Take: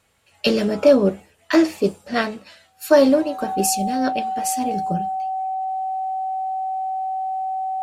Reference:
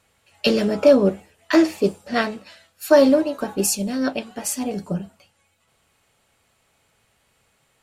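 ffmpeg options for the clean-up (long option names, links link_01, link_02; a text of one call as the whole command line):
ffmpeg -i in.wav -af "bandreject=frequency=760:width=30" out.wav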